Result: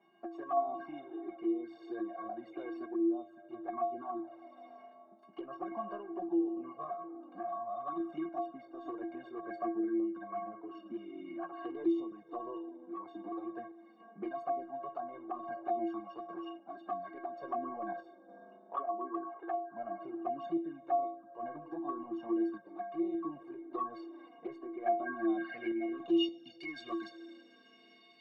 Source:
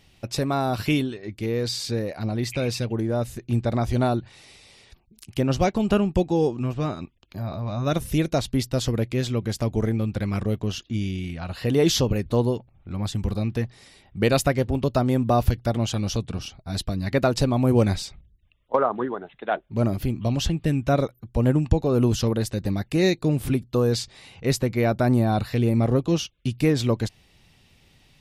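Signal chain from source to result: treble shelf 6.6 kHz -8.5 dB; in parallel at 0 dB: compression 6:1, threshold -31 dBFS, peak gain reduction 17.5 dB; on the sum: steep high-pass 180 Hz 36 dB/octave; peak limiter -14.5 dBFS, peak gain reduction 9 dB; inharmonic resonator 330 Hz, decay 0.54 s, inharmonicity 0.03; reverberation RT60 3.9 s, pre-delay 3 ms, DRR 11 dB; low-pass sweep 980 Hz -> 4.8 kHz, 24.80–26.56 s; dynamic bell 1.3 kHz, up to +4 dB, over -56 dBFS, Q 0.98; touch-sensitive flanger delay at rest 5 ms, full sweep at -32.5 dBFS; random-step tremolo; three bands compressed up and down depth 40%; trim +8.5 dB

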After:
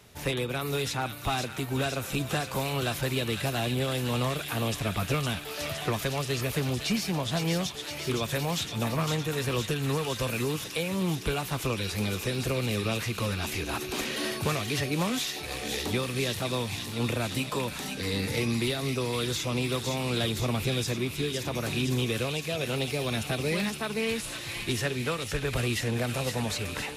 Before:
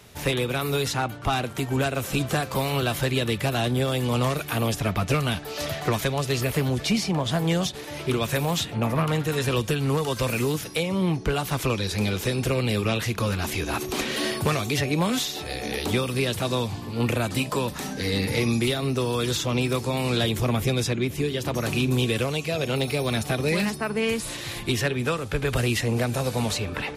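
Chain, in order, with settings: feedback echo behind a high-pass 512 ms, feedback 72%, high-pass 2 kHz, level -4 dB; trim -5 dB

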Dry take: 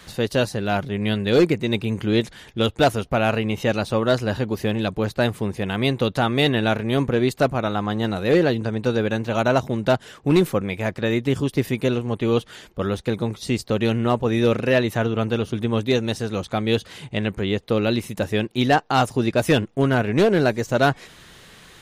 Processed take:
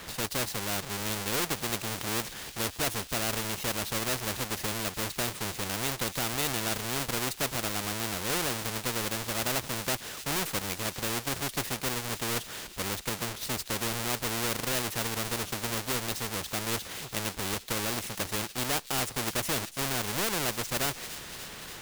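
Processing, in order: square wave that keeps the level; feedback echo behind a high-pass 290 ms, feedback 73%, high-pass 3.3 kHz, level -18 dB; spectrum-flattening compressor 2:1; trim -6 dB

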